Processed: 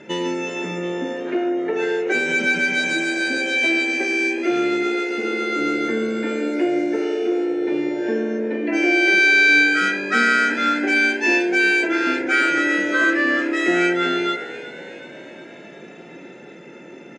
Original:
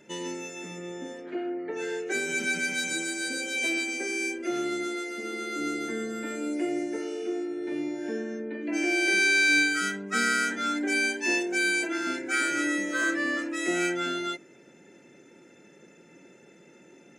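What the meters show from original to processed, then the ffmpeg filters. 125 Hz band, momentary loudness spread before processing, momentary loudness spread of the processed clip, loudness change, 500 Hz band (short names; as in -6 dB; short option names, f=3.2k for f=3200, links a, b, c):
n/a, 12 LU, 10 LU, +9.0 dB, +10.5 dB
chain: -filter_complex "[0:a]lowpass=3.5k,lowshelf=f=70:g=-11.5,bandreject=f=99.25:t=h:w=4,bandreject=f=198.5:t=h:w=4,bandreject=f=297.75:t=h:w=4,bandreject=f=397:t=h:w=4,bandreject=f=496.25:t=h:w=4,bandreject=f=595.5:t=h:w=4,bandreject=f=694.75:t=h:w=4,bandreject=f=794:t=h:w=4,bandreject=f=893.25:t=h:w=4,bandreject=f=992.5:t=h:w=4,bandreject=f=1.09175k:t=h:w=4,bandreject=f=1.191k:t=h:w=4,bandreject=f=1.29025k:t=h:w=4,bandreject=f=1.3895k:t=h:w=4,bandreject=f=1.48875k:t=h:w=4,bandreject=f=1.588k:t=h:w=4,bandreject=f=1.68725k:t=h:w=4,bandreject=f=1.7865k:t=h:w=4,bandreject=f=1.88575k:t=h:w=4,bandreject=f=1.985k:t=h:w=4,bandreject=f=2.08425k:t=h:w=4,bandreject=f=2.1835k:t=h:w=4,bandreject=f=2.28275k:t=h:w=4,bandreject=f=2.382k:t=h:w=4,bandreject=f=2.48125k:t=h:w=4,bandreject=f=2.5805k:t=h:w=4,bandreject=f=2.67975k:t=h:w=4,asplit=2[a][b];[b]acompressor=threshold=-37dB:ratio=6,volume=2.5dB[c];[a][c]amix=inputs=2:normalize=0,asplit=7[d][e][f][g][h][i][j];[e]adelay=368,afreqshift=65,volume=-15.5dB[k];[f]adelay=736,afreqshift=130,volume=-19.9dB[l];[g]adelay=1104,afreqshift=195,volume=-24.4dB[m];[h]adelay=1472,afreqshift=260,volume=-28.8dB[n];[i]adelay=1840,afreqshift=325,volume=-33.2dB[o];[j]adelay=2208,afreqshift=390,volume=-37.7dB[p];[d][k][l][m][n][o][p]amix=inputs=7:normalize=0,volume=7dB"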